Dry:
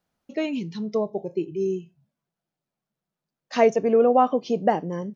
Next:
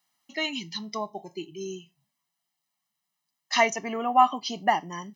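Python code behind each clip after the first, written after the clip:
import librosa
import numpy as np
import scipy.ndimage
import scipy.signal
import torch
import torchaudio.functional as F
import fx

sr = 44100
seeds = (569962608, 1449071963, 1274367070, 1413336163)

y = fx.lowpass(x, sr, hz=2900.0, slope=6)
y = fx.tilt_eq(y, sr, slope=5.5)
y = y + 0.87 * np.pad(y, (int(1.0 * sr / 1000.0), 0))[:len(y)]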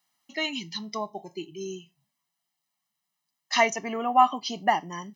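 y = x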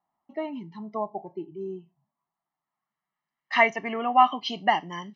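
y = fx.filter_sweep_lowpass(x, sr, from_hz=840.0, to_hz=3500.0, start_s=1.8, end_s=4.61, q=1.5)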